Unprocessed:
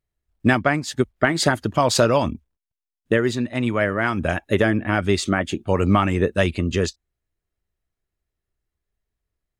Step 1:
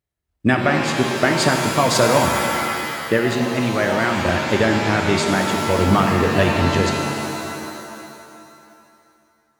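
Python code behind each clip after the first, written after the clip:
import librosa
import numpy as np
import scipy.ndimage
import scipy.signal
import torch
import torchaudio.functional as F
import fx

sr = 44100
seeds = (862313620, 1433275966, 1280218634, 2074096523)

y = scipy.signal.sosfilt(scipy.signal.butter(2, 61.0, 'highpass', fs=sr, output='sos'), x)
y = fx.rev_shimmer(y, sr, seeds[0], rt60_s=2.4, semitones=7, shimmer_db=-2, drr_db=3.0)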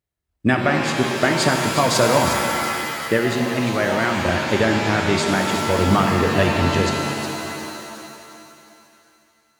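y = fx.echo_wet_highpass(x, sr, ms=360, feedback_pct=47, hz=1900.0, wet_db=-8.5)
y = y * 10.0 ** (-1.0 / 20.0)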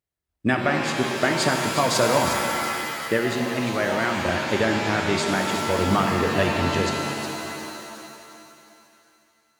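y = fx.low_shelf(x, sr, hz=150.0, db=-4.5)
y = y * 10.0 ** (-3.0 / 20.0)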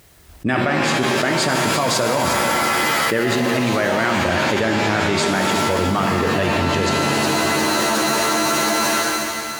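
y = fx.env_flatten(x, sr, amount_pct=100)
y = y * 10.0 ** (-1.5 / 20.0)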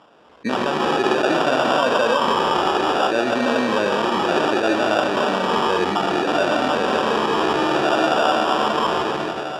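y = fx.spec_ripple(x, sr, per_octave=0.86, drift_hz=-0.61, depth_db=11)
y = fx.sample_hold(y, sr, seeds[1], rate_hz=2100.0, jitter_pct=0)
y = fx.bandpass_edges(y, sr, low_hz=300.0, high_hz=3800.0)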